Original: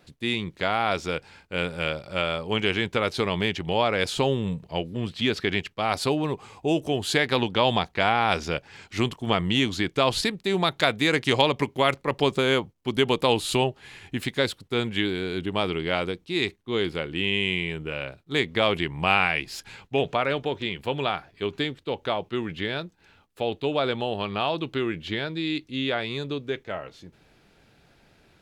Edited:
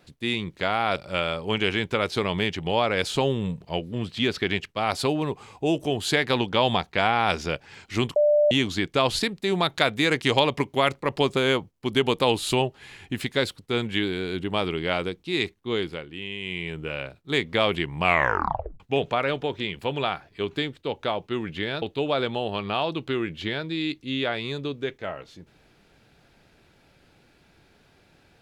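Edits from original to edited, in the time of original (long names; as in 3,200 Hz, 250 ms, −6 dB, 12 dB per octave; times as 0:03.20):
0:00.96–0:01.98: remove
0:09.18–0:09.53: beep over 593 Hz −15.5 dBFS
0:16.72–0:17.83: duck −9.5 dB, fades 0.41 s
0:19.05: tape stop 0.77 s
0:22.84–0:23.48: remove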